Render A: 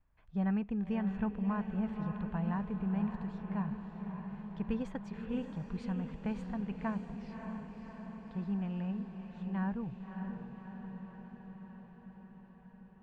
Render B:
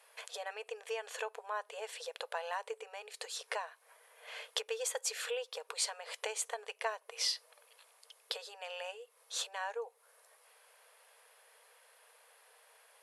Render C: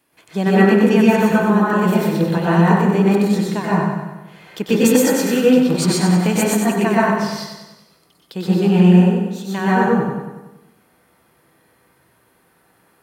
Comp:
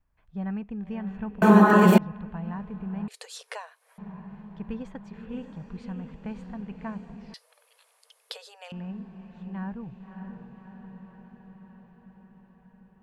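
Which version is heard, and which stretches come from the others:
A
1.42–1.98 s: from C
3.08–3.98 s: from B
7.34–8.72 s: from B

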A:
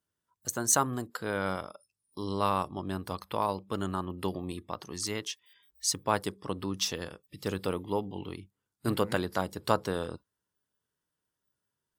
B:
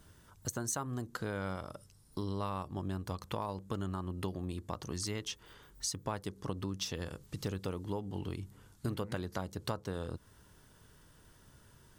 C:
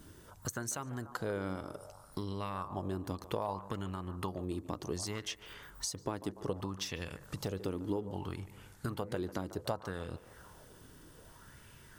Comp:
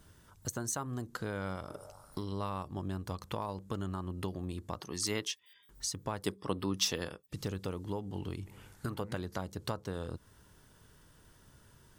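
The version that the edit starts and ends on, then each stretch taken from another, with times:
B
1.69–2.32 s: from C
4.80–5.69 s: from A
6.24–7.32 s: from A
8.46–9.01 s: from C

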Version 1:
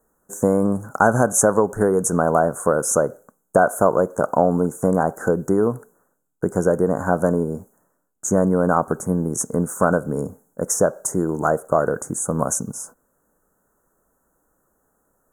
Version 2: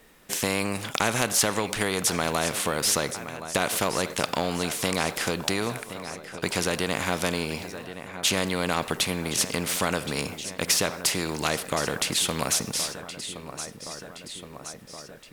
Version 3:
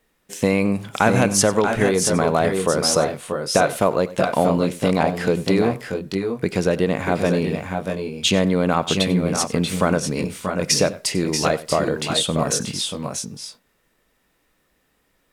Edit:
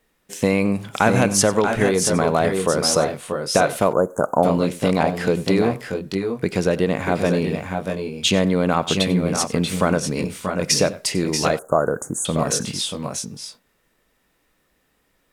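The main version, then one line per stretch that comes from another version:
3
3.93–4.43 s: from 1
11.59–12.25 s: from 1
not used: 2

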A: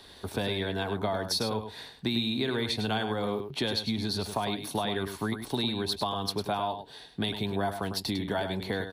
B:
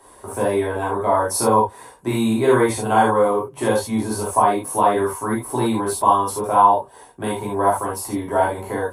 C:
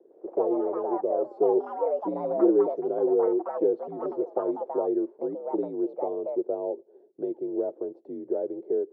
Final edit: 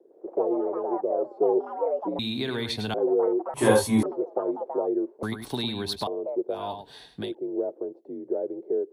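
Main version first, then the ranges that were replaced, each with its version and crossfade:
C
2.19–2.94 s: from A
3.54–4.03 s: from B
5.23–6.07 s: from A
6.60–7.23 s: from A, crossfade 0.24 s

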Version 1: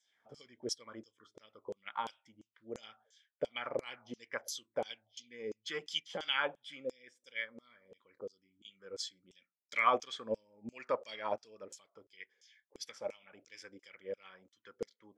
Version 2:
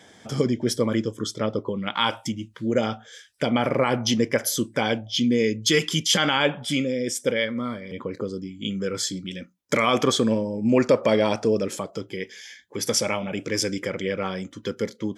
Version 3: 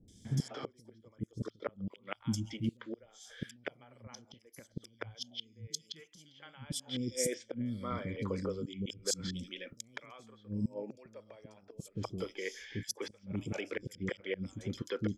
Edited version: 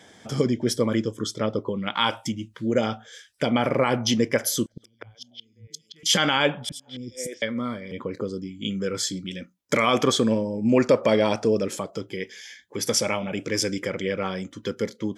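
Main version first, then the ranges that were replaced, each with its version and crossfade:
2
4.66–6.03 s: from 3
6.69–7.42 s: from 3
not used: 1

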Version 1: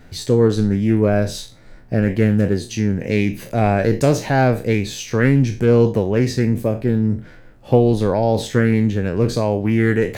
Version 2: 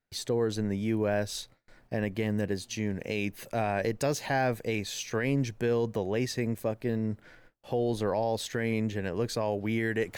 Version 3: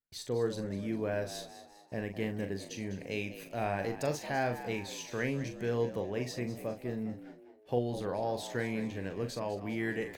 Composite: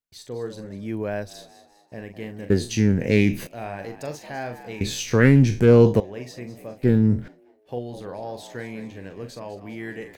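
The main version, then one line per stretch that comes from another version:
3
0.83–1.29 s: from 2, crossfade 0.24 s
2.50–3.47 s: from 1
4.81–6.00 s: from 1
6.83–7.28 s: from 1

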